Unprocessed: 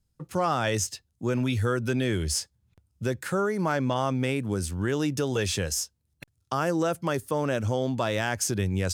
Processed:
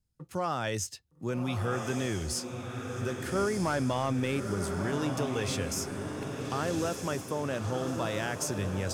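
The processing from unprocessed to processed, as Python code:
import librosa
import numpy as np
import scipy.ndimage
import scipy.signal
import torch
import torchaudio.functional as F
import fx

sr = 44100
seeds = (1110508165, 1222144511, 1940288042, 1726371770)

y = fx.leveller(x, sr, passes=1, at=(3.35, 4.41))
y = fx.echo_diffused(y, sr, ms=1240, feedback_pct=52, wet_db=-5.5)
y = y * 10.0 ** (-6.0 / 20.0)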